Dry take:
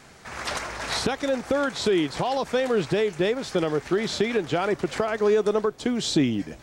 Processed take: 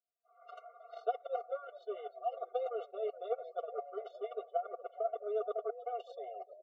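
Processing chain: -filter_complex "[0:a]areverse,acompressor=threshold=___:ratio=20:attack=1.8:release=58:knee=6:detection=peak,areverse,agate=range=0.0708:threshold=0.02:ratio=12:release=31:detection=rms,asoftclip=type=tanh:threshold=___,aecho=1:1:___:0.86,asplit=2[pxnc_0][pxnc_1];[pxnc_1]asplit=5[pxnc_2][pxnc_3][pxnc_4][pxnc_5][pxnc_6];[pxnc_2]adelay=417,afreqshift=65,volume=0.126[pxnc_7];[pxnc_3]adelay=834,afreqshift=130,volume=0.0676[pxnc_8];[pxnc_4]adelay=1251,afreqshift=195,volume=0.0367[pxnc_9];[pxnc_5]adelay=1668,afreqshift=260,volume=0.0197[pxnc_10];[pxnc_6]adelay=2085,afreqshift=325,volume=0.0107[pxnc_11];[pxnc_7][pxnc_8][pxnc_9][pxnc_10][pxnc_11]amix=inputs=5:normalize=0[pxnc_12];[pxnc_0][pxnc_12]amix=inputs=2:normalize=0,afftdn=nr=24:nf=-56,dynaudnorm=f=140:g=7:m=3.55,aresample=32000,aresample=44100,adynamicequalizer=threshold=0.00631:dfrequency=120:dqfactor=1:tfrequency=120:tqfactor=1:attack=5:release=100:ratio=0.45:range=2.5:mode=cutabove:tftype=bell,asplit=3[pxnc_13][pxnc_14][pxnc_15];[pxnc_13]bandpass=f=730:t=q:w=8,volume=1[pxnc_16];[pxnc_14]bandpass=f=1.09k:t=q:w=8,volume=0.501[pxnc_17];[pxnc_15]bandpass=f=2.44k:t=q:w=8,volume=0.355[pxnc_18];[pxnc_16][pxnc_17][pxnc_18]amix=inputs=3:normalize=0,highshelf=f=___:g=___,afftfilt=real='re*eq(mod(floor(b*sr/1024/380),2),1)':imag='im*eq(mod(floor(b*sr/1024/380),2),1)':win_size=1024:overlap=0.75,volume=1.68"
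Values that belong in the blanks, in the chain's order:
0.0282, 0.0376, 4.3, 4.5k, -10.5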